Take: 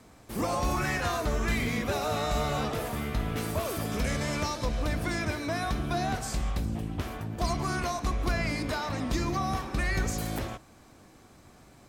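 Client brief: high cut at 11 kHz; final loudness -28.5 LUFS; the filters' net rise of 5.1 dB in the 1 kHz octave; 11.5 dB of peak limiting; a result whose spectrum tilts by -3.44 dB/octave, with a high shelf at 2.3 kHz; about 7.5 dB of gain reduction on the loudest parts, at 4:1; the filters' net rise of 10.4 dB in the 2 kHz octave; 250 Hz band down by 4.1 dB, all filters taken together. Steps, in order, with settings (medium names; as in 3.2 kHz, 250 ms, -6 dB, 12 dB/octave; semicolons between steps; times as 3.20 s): low-pass 11 kHz; peaking EQ 250 Hz -6 dB; peaking EQ 1 kHz +3.5 dB; peaking EQ 2 kHz +9 dB; treble shelf 2.3 kHz +5.5 dB; compression 4:1, threshold -28 dBFS; trim +7.5 dB; peak limiter -20.5 dBFS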